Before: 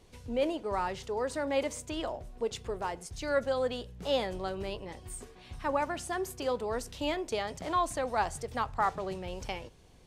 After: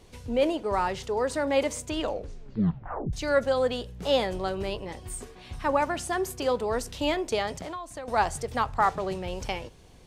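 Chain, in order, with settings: 1.97 s: tape stop 1.16 s; 7.55–8.08 s: compression 12:1, threshold -40 dBFS, peak gain reduction 16.5 dB; trim +5.5 dB

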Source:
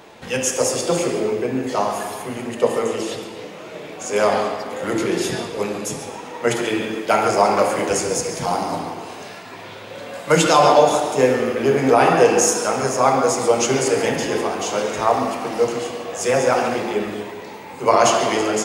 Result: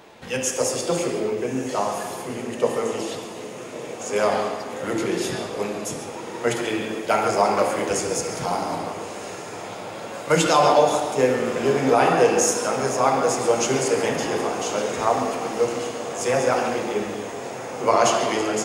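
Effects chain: echo that smears into a reverb 1267 ms, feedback 71%, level -13.5 dB; trim -3.5 dB

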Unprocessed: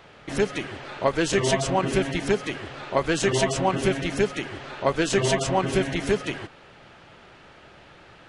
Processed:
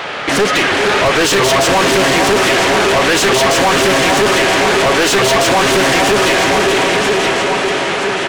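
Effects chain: feedback delay 975 ms, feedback 34%, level -13.5 dB; level rider gain up to 4 dB; echo that smears into a reverb 496 ms, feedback 52%, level -7.5 dB; overdrive pedal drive 37 dB, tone 5.5 kHz, clips at 0 dBFS; in parallel at +1 dB: peak limiter -12 dBFS, peak gain reduction 10 dB; on the sum: loudspeaker Doppler distortion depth 0.21 ms; trim -7.5 dB

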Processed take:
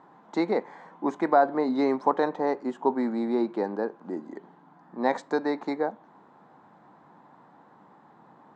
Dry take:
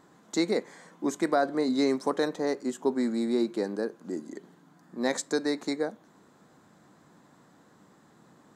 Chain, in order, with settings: band-pass 110–2600 Hz; peaking EQ 870 Hz +12 dB 0.69 oct

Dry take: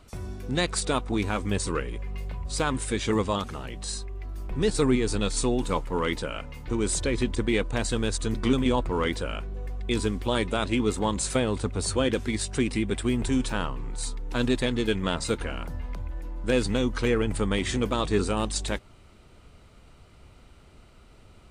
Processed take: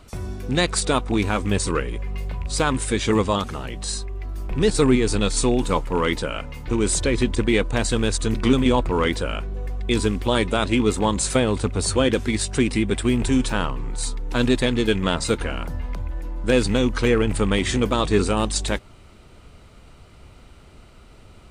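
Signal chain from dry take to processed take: rattle on loud lows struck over -25 dBFS, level -34 dBFS; trim +5.5 dB

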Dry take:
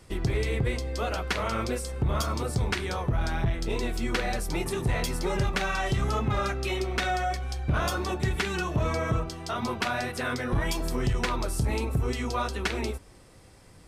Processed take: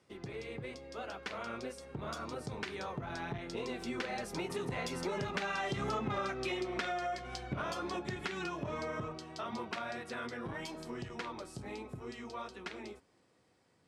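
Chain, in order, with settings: Doppler pass-by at 6.02 s, 12 m/s, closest 5.1 m; high-pass 170 Hz 12 dB/octave; compression 5:1, threshold -45 dBFS, peak gain reduction 17 dB; distance through air 59 m; trim +10.5 dB

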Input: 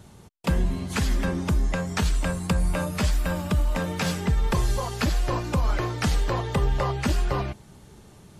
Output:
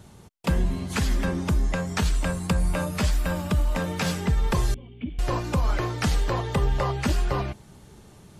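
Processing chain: 4.74–5.19 s: cascade formant filter i

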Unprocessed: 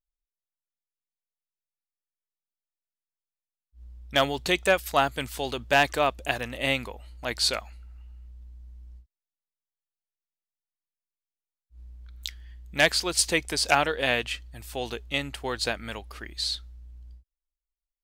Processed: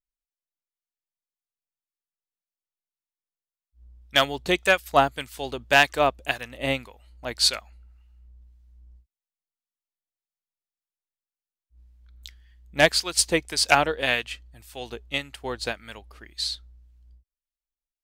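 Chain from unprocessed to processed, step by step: harmonic tremolo 1.8 Hz, depth 50%, crossover 1.1 kHz; upward expansion 1.5:1, over -41 dBFS; trim +6.5 dB

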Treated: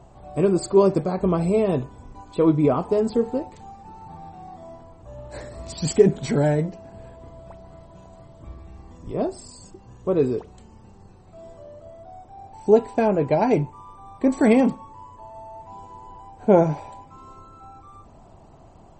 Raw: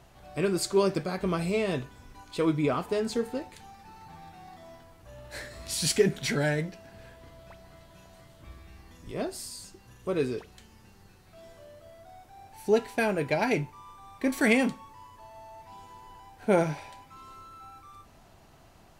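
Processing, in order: high-order bell 3 kHz -13.5 dB 2.5 oct; trim +8.5 dB; MP3 32 kbps 48 kHz

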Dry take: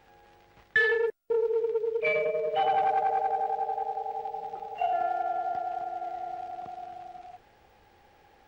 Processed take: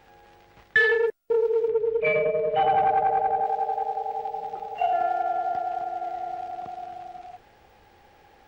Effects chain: 1.68–3.44 s: tone controls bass +8 dB, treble -13 dB; trim +4 dB

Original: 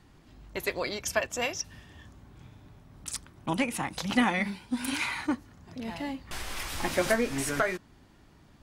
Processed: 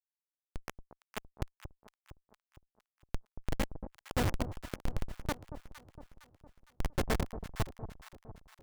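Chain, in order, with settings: spectral peaks clipped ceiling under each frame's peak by 18 dB; Schmitt trigger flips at -19 dBFS; echo whose repeats swap between lows and highs 230 ms, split 1 kHz, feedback 69%, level -10.5 dB; trim +5 dB

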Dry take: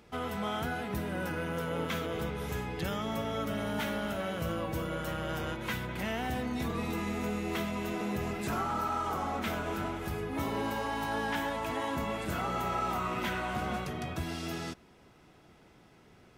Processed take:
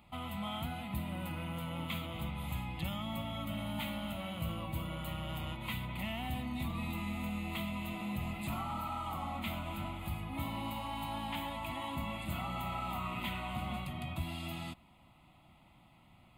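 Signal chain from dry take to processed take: static phaser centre 1.6 kHz, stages 6; dynamic bell 840 Hz, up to -5 dB, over -46 dBFS, Q 0.87

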